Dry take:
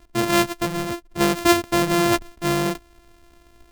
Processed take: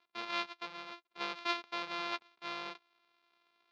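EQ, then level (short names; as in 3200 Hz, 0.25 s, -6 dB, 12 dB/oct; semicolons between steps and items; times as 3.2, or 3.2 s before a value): air absorption 150 m; speaker cabinet 230–3700 Hz, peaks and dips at 300 Hz -10 dB, 640 Hz -6 dB, 1800 Hz -10 dB, 3000 Hz -8 dB; differentiator; +4.0 dB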